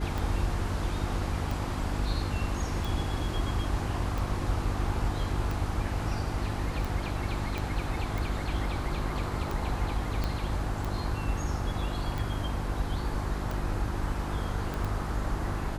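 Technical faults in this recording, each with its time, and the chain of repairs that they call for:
hum 50 Hz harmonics 7 -34 dBFS
tick 45 rpm
7.58 s: pop -19 dBFS
10.24 s: pop -17 dBFS
14.74 s: pop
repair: de-click; de-hum 50 Hz, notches 7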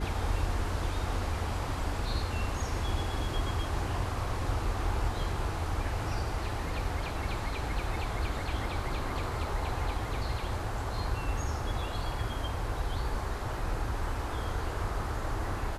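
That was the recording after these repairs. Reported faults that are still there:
7.58 s: pop
10.24 s: pop

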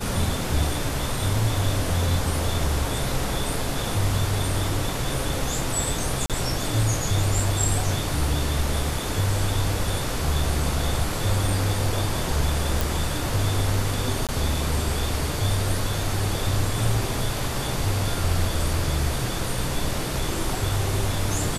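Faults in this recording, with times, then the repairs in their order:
6.26–6.30 s: dropout 37 ms
12.81 s: pop
14.27–14.29 s: dropout 17 ms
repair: de-click; interpolate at 6.26 s, 37 ms; interpolate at 14.27 s, 17 ms

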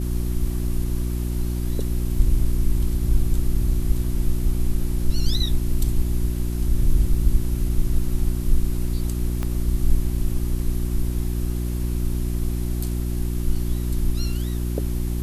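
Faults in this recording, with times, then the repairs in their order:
hum 60 Hz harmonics 6 -25 dBFS
9.43 s: pop -14 dBFS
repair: de-click; de-hum 60 Hz, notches 6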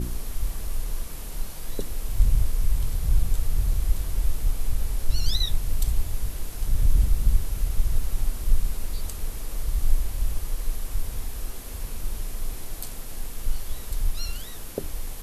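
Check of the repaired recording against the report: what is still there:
9.43 s: pop

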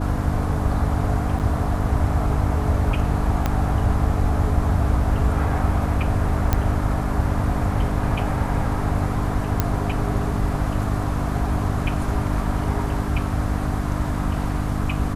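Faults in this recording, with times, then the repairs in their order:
hum 50 Hz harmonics 6 -26 dBFS
1.39–1.40 s: dropout 8.1 ms
3.46 s: pop -8 dBFS
6.53 s: pop -5 dBFS
9.60 s: pop -5 dBFS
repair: de-click; de-hum 50 Hz, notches 6; interpolate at 1.39 s, 8.1 ms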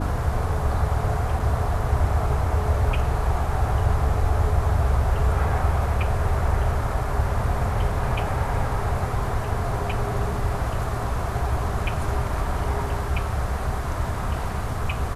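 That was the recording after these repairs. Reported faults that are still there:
3.46 s: pop

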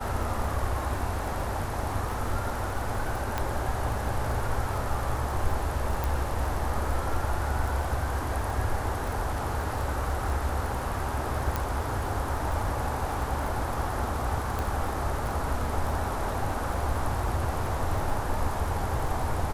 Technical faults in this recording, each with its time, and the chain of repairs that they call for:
crackle 24 per s -32 dBFS
3.38 s: pop -13 dBFS
6.04 s: pop
11.56 s: pop
14.59 s: pop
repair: de-click

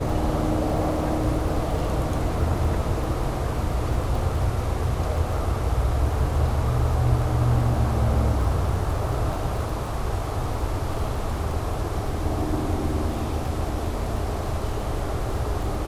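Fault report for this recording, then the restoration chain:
crackle 22 per s -31 dBFS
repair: de-click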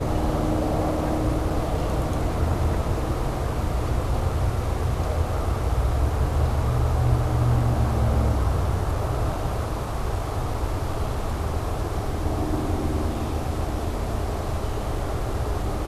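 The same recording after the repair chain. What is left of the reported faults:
nothing left

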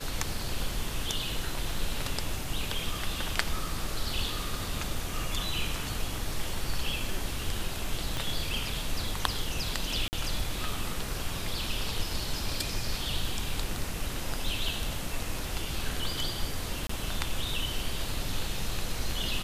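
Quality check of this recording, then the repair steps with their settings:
8.17 s: pop
10.08–10.13 s: dropout 49 ms
16.87–16.89 s: dropout 24 ms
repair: de-click; interpolate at 10.08 s, 49 ms; interpolate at 16.87 s, 24 ms

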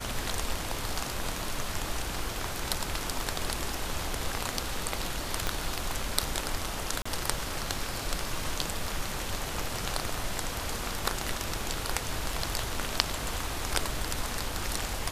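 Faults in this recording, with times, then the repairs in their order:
5.47 s: pop -13 dBFS
7.02–7.05 s: dropout 35 ms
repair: de-click; interpolate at 7.02 s, 35 ms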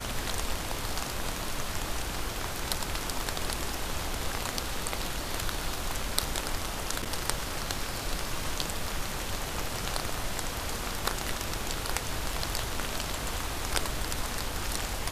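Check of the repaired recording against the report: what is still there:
5.47 s: pop

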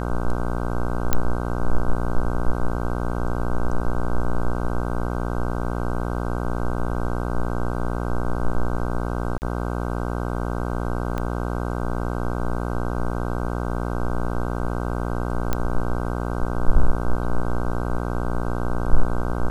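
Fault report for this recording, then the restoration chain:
buzz 60 Hz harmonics 26 -26 dBFS
1.13 s: pop -4 dBFS
9.38–9.42 s: dropout 39 ms
11.18 s: pop -15 dBFS
15.53 s: pop -8 dBFS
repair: de-click; de-hum 60 Hz, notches 26; interpolate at 9.38 s, 39 ms

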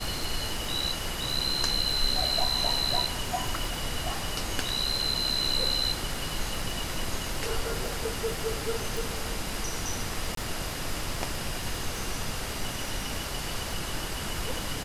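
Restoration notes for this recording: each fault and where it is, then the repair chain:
crackle 41 per s -33 dBFS
8.97 s: pop
10.35–10.37 s: dropout 23 ms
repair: de-click; interpolate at 10.35 s, 23 ms

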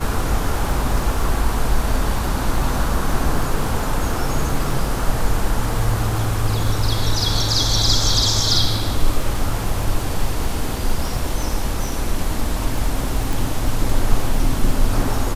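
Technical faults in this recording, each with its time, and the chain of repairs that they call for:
crackle 35 per s -25 dBFS
13.33 s: pop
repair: de-click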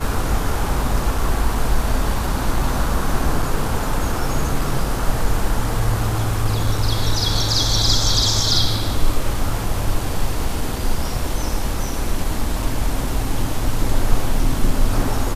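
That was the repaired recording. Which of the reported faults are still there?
nothing left

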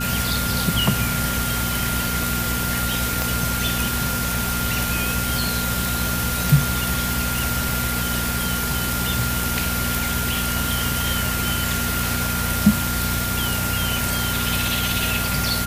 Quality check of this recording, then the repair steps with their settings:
hum 60 Hz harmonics 4 -27 dBFS
whine 1.4 kHz -28 dBFS
3.22 s: pop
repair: de-click; band-stop 1.4 kHz, Q 30; de-hum 60 Hz, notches 4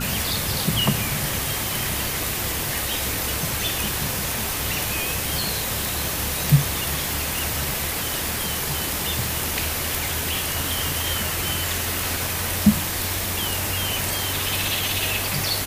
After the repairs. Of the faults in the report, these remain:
3.22 s: pop

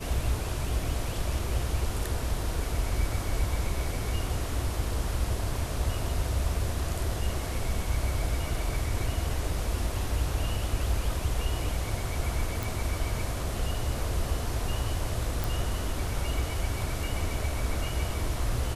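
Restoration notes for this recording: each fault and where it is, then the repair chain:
12.63 s: pop
15.44 s: pop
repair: de-click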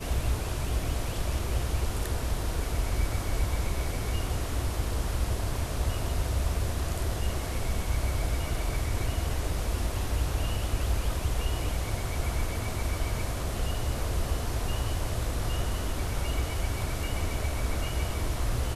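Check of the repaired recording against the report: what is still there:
15.44 s: pop

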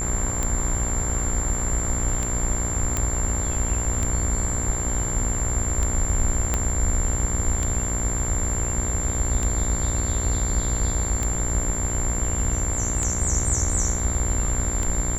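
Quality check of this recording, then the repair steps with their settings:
buzz 60 Hz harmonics 38 -29 dBFS
tick 33 1/3 rpm -12 dBFS
whine 7.3 kHz -27 dBFS
2.97 s: pop -9 dBFS
6.54 s: pop -9 dBFS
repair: de-click; de-hum 60 Hz, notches 38; band-stop 7.3 kHz, Q 30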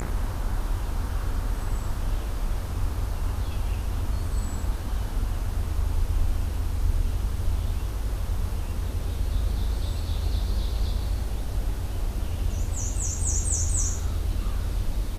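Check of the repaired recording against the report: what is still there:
6.54 s: pop

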